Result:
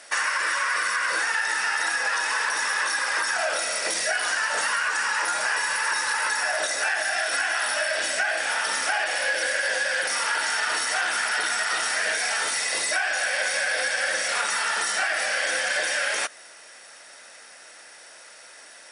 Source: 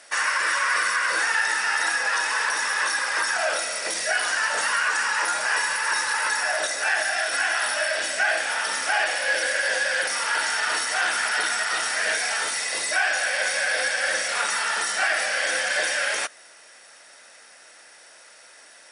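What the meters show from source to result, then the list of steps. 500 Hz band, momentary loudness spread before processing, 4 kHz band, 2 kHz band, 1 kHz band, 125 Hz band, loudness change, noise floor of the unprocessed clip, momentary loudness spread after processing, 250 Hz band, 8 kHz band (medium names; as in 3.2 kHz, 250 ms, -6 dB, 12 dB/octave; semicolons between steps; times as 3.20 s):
-1.0 dB, 2 LU, -0.5 dB, -1.0 dB, -1.0 dB, no reading, -1.0 dB, -50 dBFS, 1 LU, -0.5 dB, -0.5 dB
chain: compression, threshold -24 dBFS, peak gain reduction 6.5 dB; trim +2.5 dB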